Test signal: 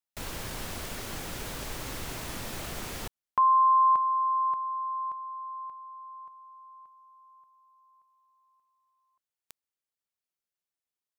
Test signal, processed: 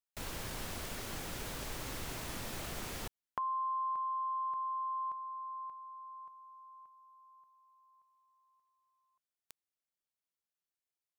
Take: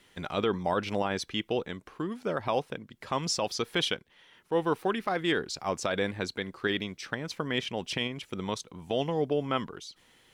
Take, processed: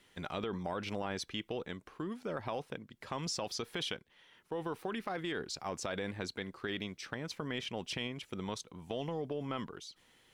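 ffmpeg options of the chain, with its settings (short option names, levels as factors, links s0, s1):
-af "acompressor=threshold=0.0282:ratio=6:attack=6.3:release=40:knee=1:detection=peak,volume=0.596"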